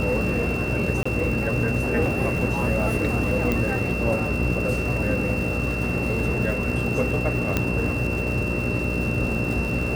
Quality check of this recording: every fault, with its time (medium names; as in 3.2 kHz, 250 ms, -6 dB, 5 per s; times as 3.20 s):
buzz 60 Hz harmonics 10 -28 dBFS
crackle 330 per s -31 dBFS
whine 2.7 kHz -29 dBFS
1.03–1.05 s: dropout 25 ms
3.52 s: pop -10 dBFS
7.57 s: pop -7 dBFS